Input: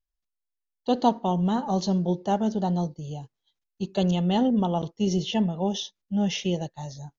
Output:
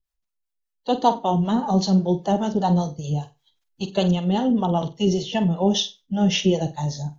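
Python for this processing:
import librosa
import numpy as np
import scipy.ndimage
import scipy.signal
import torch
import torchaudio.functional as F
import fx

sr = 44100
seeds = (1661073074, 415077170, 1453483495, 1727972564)

p1 = fx.spec_quant(x, sr, step_db=15)
p2 = fx.rider(p1, sr, range_db=4, speed_s=0.5)
p3 = fx.harmonic_tremolo(p2, sr, hz=5.1, depth_pct=70, crossover_hz=510.0)
p4 = p3 + fx.room_flutter(p3, sr, wall_m=8.1, rt60_s=0.24, dry=0)
y = F.gain(torch.from_numpy(p4), 8.0).numpy()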